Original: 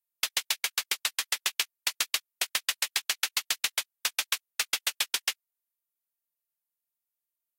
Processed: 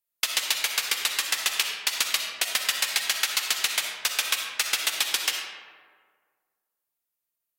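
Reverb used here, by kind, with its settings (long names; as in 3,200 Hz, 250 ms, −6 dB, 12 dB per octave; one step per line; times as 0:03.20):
comb and all-pass reverb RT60 1.7 s, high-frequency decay 0.5×, pre-delay 20 ms, DRR 2 dB
level +3 dB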